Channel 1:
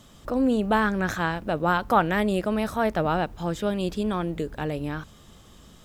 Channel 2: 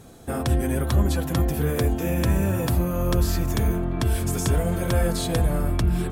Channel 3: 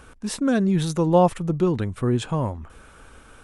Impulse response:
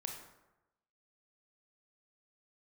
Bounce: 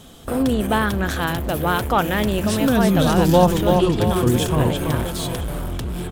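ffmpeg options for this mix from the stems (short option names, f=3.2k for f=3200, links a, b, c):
-filter_complex "[0:a]acontrast=72,volume=-4.5dB[a];[1:a]highshelf=f=9.9k:g=7,volume=24dB,asoftclip=hard,volume=-24dB,volume=0dB,asplit=2[b][c];[c]volume=-22.5dB[d];[2:a]adelay=2200,volume=2dB,asplit=2[e][f];[f]volume=-4.5dB[g];[d][g]amix=inputs=2:normalize=0,aecho=0:1:333|666|999|1332|1665|1998|2331:1|0.48|0.23|0.111|0.0531|0.0255|0.0122[h];[a][b][e][h]amix=inputs=4:normalize=0,equalizer=f=3.2k:t=o:w=0.47:g=6.5"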